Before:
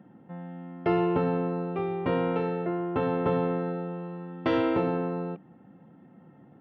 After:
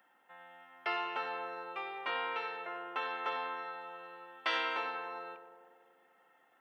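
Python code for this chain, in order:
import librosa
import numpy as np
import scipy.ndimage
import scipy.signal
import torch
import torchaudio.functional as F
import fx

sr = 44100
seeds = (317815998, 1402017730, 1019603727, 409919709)

y = scipy.signal.sosfilt(scipy.signal.butter(2, 1100.0, 'highpass', fs=sr, output='sos'), x)
y = fx.tilt_eq(y, sr, slope=2.5)
y = fx.echo_tape(y, sr, ms=97, feedback_pct=83, wet_db=-11.0, lp_hz=1600.0, drive_db=21.0, wow_cents=6)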